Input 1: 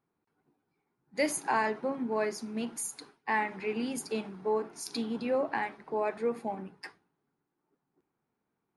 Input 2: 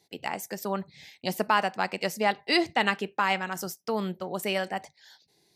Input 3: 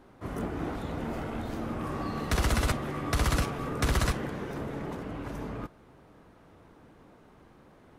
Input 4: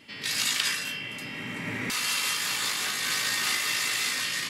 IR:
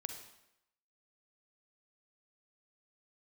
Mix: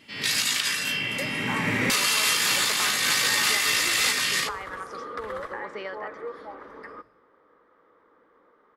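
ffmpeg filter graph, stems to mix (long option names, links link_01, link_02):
-filter_complex "[0:a]highpass=590,volume=-4dB,asplit=2[link_01][link_02];[link_02]volume=-9.5dB[link_03];[1:a]adelay=1300,volume=-4dB[link_04];[2:a]adelay=1350,volume=-5.5dB,asplit=2[link_05][link_06];[link_06]volume=-16dB[link_07];[3:a]dynaudnorm=framelen=100:gausssize=3:maxgain=8dB,volume=-2dB,asplit=2[link_08][link_09];[link_09]volume=-12.5dB[link_10];[link_01][link_04][link_05]amix=inputs=3:normalize=0,highpass=350,equalizer=frequency=490:width_type=q:width=4:gain=8,equalizer=frequency=700:width_type=q:width=4:gain=-9,equalizer=frequency=1200:width_type=q:width=4:gain=10,equalizer=frequency=1900:width_type=q:width=4:gain=6,equalizer=frequency=2700:width_type=q:width=4:gain=-10,equalizer=frequency=4200:width_type=q:width=4:gain=-5,lowpass=frequency=4700:width=0.5412,lowpass=frequency=4700:width=1.3066,acompressor=threshold=-31dB:ratio=6,volume=0dB[link_11];[4:a]atrim=start_sample=2205[link_12];[link_03][link_07][link_10]amix=inputs=3:normalize=0[link_13];[link_13][link_12]afir=irnorm=-1:irlink=0[link_14];[link_08][link_11][link_14]amix=inputs=3:normalize=0,alimiter=limit=-11.5dB:level=0:latency=1:release=398"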